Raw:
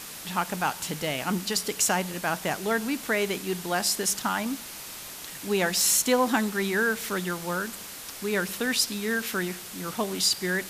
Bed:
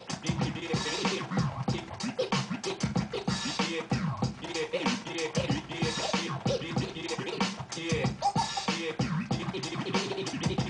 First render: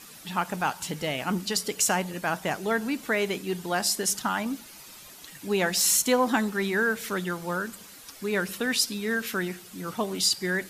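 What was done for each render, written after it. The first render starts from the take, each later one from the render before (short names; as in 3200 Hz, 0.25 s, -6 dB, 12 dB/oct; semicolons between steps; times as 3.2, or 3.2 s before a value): denoiser 10 dB, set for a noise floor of -41 dBFS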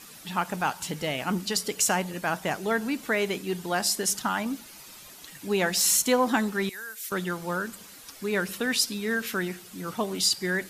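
6.69–7.12 pre-emphasis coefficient 0.97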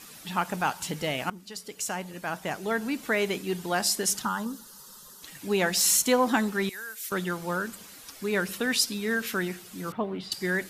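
1.3–3.17 fade in, from -18 dB; 4.25–5.23 fixed phaser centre 460 Hz, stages 8; 9.92–10.32 air absorption 470 m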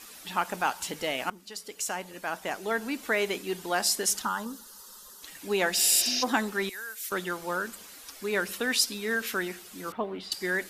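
5.8–6.2 spectral repair 250–6800 Hz before; bell 140 Hz -14.5 dB 0.93 oct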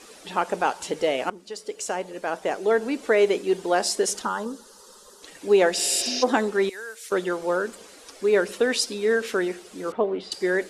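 LPF 9900 Hz 24 dB/oct; bell 460 Hz +12.5 dB 1.3 oct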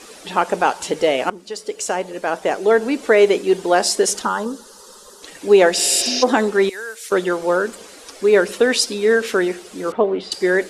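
gain +6.5 dB; limiter -2 dBFS, peak gain reduction 2 dB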